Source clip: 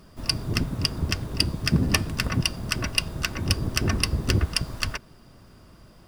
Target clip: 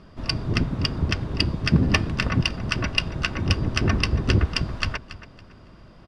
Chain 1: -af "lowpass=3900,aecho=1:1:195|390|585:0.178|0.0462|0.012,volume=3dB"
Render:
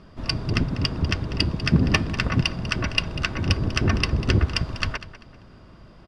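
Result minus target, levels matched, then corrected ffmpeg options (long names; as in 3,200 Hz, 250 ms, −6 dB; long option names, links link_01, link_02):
echo 84 ms early
-af "lowpass=3900,aecho=1:1:279|558|837:0.178|0.0462|0.012,volume=3dB"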